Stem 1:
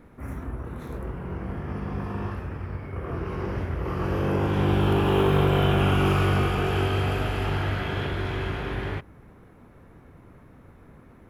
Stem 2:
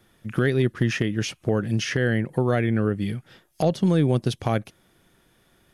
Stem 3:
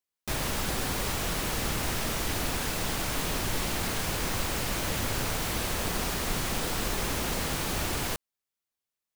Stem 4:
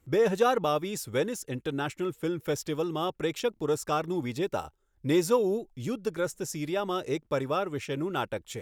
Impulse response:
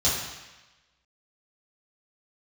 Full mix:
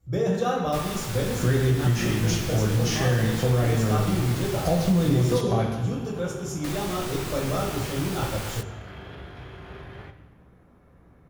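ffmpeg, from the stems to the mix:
-filter_complex "[0:a]alimiter=level_in=3.5dB:limit=-24dB:level=0:latency=1:release=49,volume=-3.5dB,adelay=1100,volume=-7dB,asplit=2[link_01][link_02];[link_02]volume=-18.5dB[link_03];[1:a]highshelf=frequency=8800:gain=11,adelay=1050,volume=-8.5dB,asplit=2[link_04][link_05];[link_05]volume=-8dB[link_06];[2:a]flanger=delay=17:depth=2.3:speed=0.56,adelay=450,volume=-1dB,asplit=3[link_07][link_08][link_09];[link_07]atrim=end=5.41,asetpts=PTS-STARTPTS,afade=type=out:start_time=5.406:duration=0.004:curve=hsin[link_10];[link_08]atrim=start=5.41:end=6.64,asetpts=PTS-STARTPTS,volume=0[link_11];[link_09]atrim=start=6.64,asetpts=PTS-STARTPTS,afade=type=in:duration=0.004:curve=hsin[link_12];[link_10][link_11][link_12]concat=n=3:v=0:a=1[link_13];[3:a]lowshelf=frequency=150:gain=12,volume=-11dB,asplit=2[link_14][link_15];[link_15]volume=-4.5dB[link_16];[4:a]atrim=start_sample=2205[link_17];[link_03][link_06][link_16]amix=inputs=3:normalize=0[link_18];[link_18][link_17]afir=irnorm=-1:irlink=0[link_19];[link_01][link_04][link_13][link_14][link_19]amix=inputs=5:normalize=0,acompressor=threshold=-17dB:ratio=6"

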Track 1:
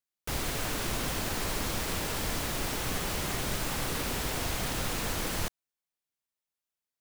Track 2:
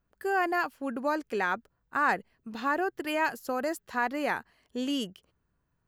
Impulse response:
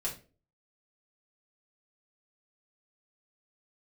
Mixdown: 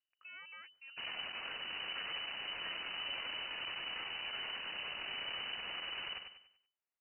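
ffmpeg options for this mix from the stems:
-filter_complex "[0:a]asoftclip=type=tanh:threshold=-35.5dB,adelay=700,volume=-0.5dB,asplit=2[link_01][link_02];[link_02]volume=-7dB[link_03];[1:a]aeval=exprs='if(lt(val(0),0),0.251*val(0),val(0))':channel_layout=same,acompressor=threshold=-29dB:ratio=6,volume=-12dB[link_04];[link_03]aecho=0:1:96|192|288|384|480:1|0.37|0.137|0.0507|0.0187[link_05];[link_01][link_04][link_05]amix=inputs=3:normalize=0,aeval=exprs='(tanh(50.1*val(0)+0.6)-tanh(0.6))/50.1':channel_layout=same,lowpass=frequency=2600:width_type=q:width=0.5098,lowpass=frequency=2600:width_type=q:width=0.6013,lowpass=frequency=2600:width_type=q:width=0.9,lowpass=frequency=2600:width_type=q:width=2.563,afreqshift=-3000"

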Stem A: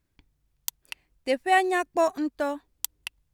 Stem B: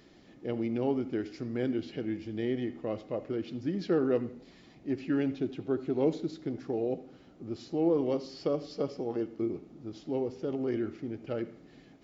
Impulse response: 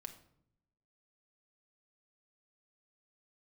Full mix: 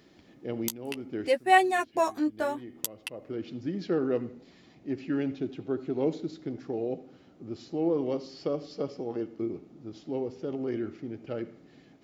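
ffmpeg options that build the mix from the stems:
-filter_complex "[0:a]flanger=delay=8:depth=8.7:regen=8:speed=0.65:shape=sinusoidal,volume=1.5dB,asplit=2[link_01][link_02];[1:a]volume=-0.5dB[link_03];[link_02]apad=whole_len=530747[link_04];[link_03][link_04]sidechaincompress=threshold=-39dB:ratio=12:attack=16:release=438[link_05];[link_01][link_05]amix=inputs=2:normalize=0,highpass=63"

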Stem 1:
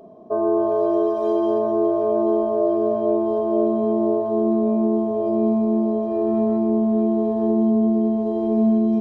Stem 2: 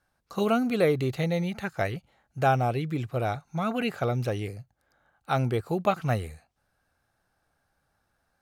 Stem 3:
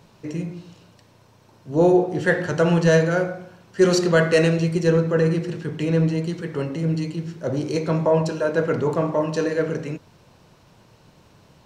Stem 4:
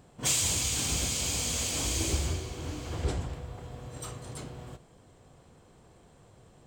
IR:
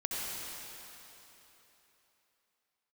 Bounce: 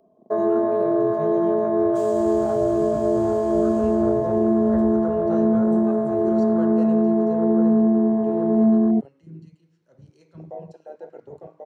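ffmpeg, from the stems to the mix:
-filter_complex "[0:a]volume=1dB[link_01];[1:a]equalizer=frequency=6500:width_type=o:width=0.41:gain=9.5,alimiter=limit=-16.5dB:level=0:latency=1:release=371,flanger=delay=17:depth=3.3:speed=1.9,volume=-7dB,asplit=2[link_02][link_03];[link_03]volume=-9.5dB[link_04];[2:a]lowshelf=frequency=430:gain=-4.5,bandreject=frequency=60:width_type=h:width=6,bandreject=frequency=120:width_type=h:width=6,bandreject=frequency=180:width_type=h:width=6,bandreject=frequency=240:width_type=h:width=6,bandreject=frequency=300:width_type=h:width=6,bandreject=frequency=360:width_type=h:width=6,bandreject=frequency=420:width_type=h:width=6,bandreject=frequency=480:width_type=h:width=6,acompressor=mode=upward:threshold=-32dB:ratio=2.5,adelay=2450,volume=-14dB,asplit=2[link_05][link_06];[link_06]volume=-22.5dB[link_07];[3:a]adelay=1700,volume=-9.5dB,asplit=2[link_08][link_09];[link_09]volume=-6dB[link_10];[4:a]atrim=start_sample=2205[link_11];[link_04][link_07][link_10]amix=inputs=3:normalize=0[link_12];[link_12][link_11]afir=irnorm=-1:irlink=0[link_13];[link_01][link_02][link_05][link_08][link_13]amix=inputs=5:normalize=0,afwtdn=0.0447,acrossover=split=370|3000[link_14][link_15][link_16];[link_15]acompressor=threshold=-20dB:ratio=6[link_17];[link_14][link_17][link_16]amix=inputs=3:normalize=0"

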